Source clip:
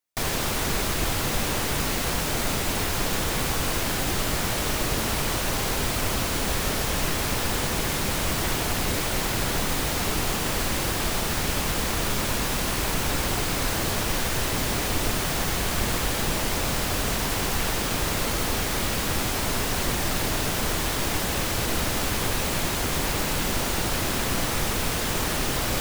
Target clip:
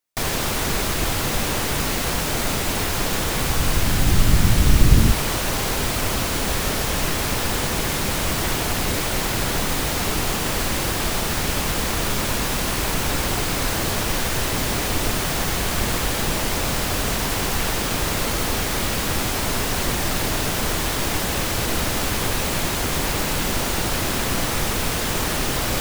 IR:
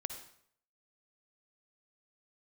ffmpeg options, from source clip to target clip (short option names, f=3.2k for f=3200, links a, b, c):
-filter_complex "[0:a]asettb=1/sr,asplit=3[a][b][c];[a]atrim=end=3.354[d];[b]atrim=start=3.35:end=5.12,asetpts=PTS-STARTPTS,afade=t=in:d=0.004:c=qsin,afade=t=out:st=1.766:d=0.004:c=qsin,asubboost=boost=10.5:cutoff=230[e];[c]atrim=start=5.116[f];[d][e]acrossfade=d=0.004:c1=hsin:c2=qsin[g];[g][f]acrossfade=d=0.004:c1=qsin:c2=hsin,volume=3dB"